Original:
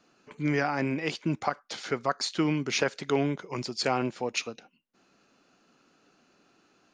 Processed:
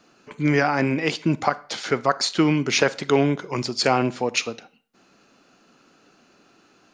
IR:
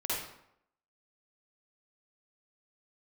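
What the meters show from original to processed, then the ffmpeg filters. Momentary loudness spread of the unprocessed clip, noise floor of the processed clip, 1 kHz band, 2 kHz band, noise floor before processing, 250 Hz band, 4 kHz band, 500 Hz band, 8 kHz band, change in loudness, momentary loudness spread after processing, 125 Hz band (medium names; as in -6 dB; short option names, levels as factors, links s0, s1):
6 LU, -59 dBFS, +7.5 dB, +7.5 dB, -67 dBFS, +7.5 dB, +7.5 dB, +7.5 dB, +7.5 dB, +7.5 dB, 7 LU, +7.5 dB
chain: -filter_complex "[0:a]asplit=2[s0][s1];[1:a]atrim=start_sample=2205,asetrate=70560,aresample=44100,adelay=9[s2];[s1][s2]afir=irnorm=-1:irlink=0,volume=0.106[s3];[s0][s3]amix=inputs=2:normalize=0,volume=2.37"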